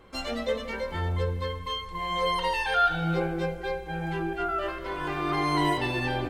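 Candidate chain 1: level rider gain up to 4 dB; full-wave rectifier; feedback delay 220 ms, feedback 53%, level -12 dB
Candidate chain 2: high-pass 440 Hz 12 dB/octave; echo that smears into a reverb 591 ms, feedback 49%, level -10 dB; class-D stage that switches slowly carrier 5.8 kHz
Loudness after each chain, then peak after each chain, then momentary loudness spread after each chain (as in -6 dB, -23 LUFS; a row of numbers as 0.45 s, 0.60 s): -28.0 LUFS, -29.0 LUFS; -8.5 dBFS, -13.5 dBFS; 8 LU, 7 LU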